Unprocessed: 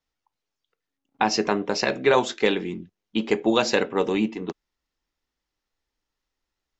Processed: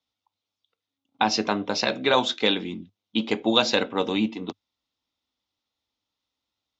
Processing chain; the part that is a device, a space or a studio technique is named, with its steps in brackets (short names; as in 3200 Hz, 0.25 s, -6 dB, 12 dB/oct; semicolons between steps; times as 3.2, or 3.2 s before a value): car door speaker (speaker cabinet 100–6600 Hz, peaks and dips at 100 Hz +7 dB, 150 Hz -7 dB, 260 Hz +3 dB, 390 Hz -8 dB, 1700 Hz -10 dB, 3600 Hz +9 dB); dynamic EQ 1600 Hz, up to +7 dB, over -48 dBFS, Q 4.6